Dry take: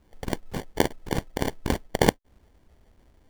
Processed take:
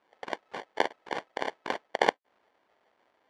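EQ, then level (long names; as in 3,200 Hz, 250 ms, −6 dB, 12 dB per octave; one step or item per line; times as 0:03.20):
band-pass filter 720–4,400 Hz
high-shelf EQ 2,600 Hz −8.5 dB
+3.0 dB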